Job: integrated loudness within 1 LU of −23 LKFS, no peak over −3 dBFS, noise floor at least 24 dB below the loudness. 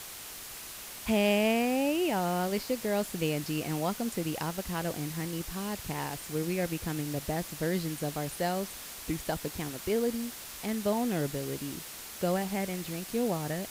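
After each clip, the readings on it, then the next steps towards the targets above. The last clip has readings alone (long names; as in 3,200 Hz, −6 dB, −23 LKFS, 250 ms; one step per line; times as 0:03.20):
background noise floor −44 dBFS; target noise floor −56 dBFS; integrated loudness −32.0 LKFS; sample peak −14.5 dBFS; target loudness −23.0 LKFS
→ broadband denoise 12 dB, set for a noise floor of −44 dBFS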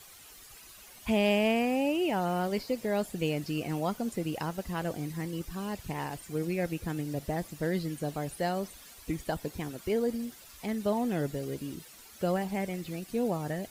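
background noise floor −52 dBFS; target noise floor −57 dBFS
→ broadband denoise 6 dB, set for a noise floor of −52 dBFS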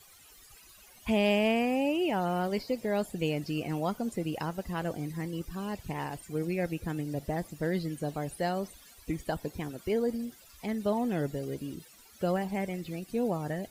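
background noise floor −56 dBFS; target noise floor −57 dBFS
→ broadband denoise 6 dB, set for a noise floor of −56 dBFS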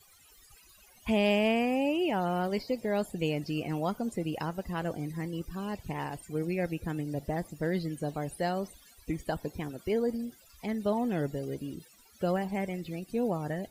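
background noise floor −59 dBFS; integrated loudness −32.5 LKFS; sample peak −15.0 dBFS; target loudness −23.0 LKFS
→ level +9.5 dB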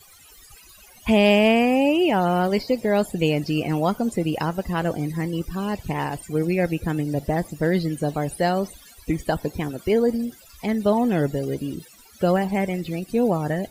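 integrated loudness −23.0 LKFS; sample peak −5.5 dBFS; background noise floor −50 dBFS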